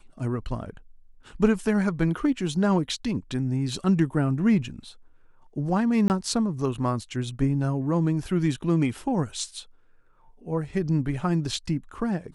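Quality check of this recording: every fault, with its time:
6.08–6.1 gap 19 ms

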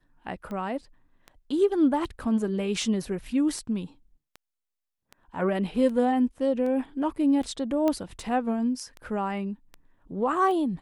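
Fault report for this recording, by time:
tick 78 rpm -26 dBFS
7.88 pop -14 dBFS

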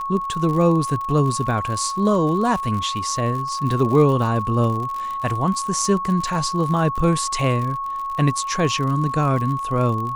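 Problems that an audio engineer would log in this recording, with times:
crackle 64/s -27 dBFS
tone 1100 Hz -24 dBFS

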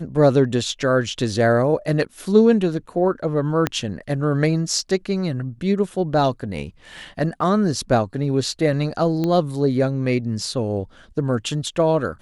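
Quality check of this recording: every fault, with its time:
3.67 pop -6 dBFS
9.24 pop -12 dBFS

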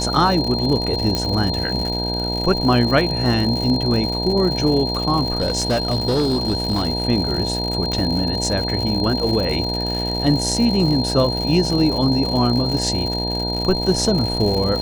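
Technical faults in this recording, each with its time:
buzz 60 Hz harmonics 16 -25 dBFS
crackle 140/s -24 dBFS
tone 4200 Hz -24 dBFS
1.15 pop -7 dBFS
5.38–6.88 clipped -14.5 dBFS
7.92 pop -11 dBFS

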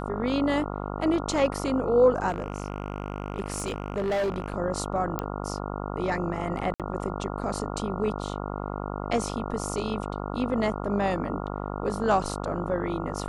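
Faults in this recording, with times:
buzz 50 Hz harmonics 28 -33 dBFS
2.29–4.54 clipped -23.5 dBFS
5.19 pop -14 dBFS
6.74–6.8 gap 57 ms

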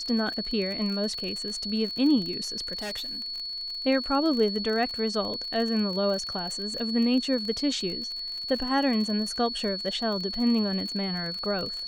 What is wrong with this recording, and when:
crackle 41/s -32 dBFS
tone 4400 Hz -32 dBFS
2.78–3.22 clipped -30.5 dBFS

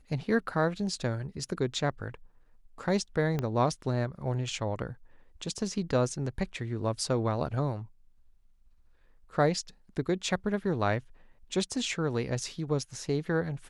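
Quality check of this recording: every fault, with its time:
3.39 pop -18 dBFS

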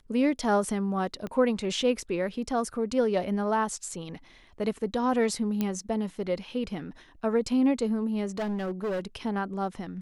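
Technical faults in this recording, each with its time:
1.27 pop -23 dBFS
5.61 pop -15 dBFS
8.37–9 clipped -27 dBFS

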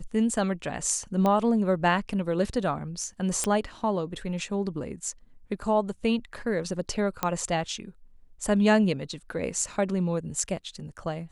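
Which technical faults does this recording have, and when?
1.26 pop -14 dBFS
3.44 pop -12 dBFS
7.23 pop -10 dBFS

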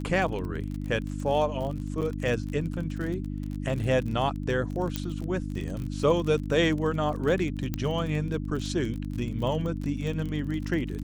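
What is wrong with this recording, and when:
crackle 38/s -33 dBFS
hum 50 Hz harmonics 6 -33 dBFS
2.01–2.02 gap 7.8 ms
4.96 pop -13 dBFS
7.74 pop -15 dBFS

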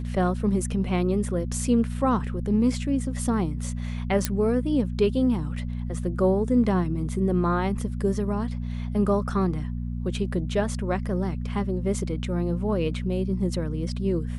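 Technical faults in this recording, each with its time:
hum 60 Hz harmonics 4 -30 dBFS
4.25 pop -6 dBFS

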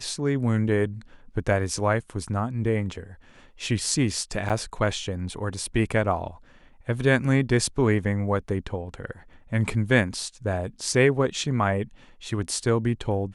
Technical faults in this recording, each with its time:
4.49–4.5 gap 7.7 ms

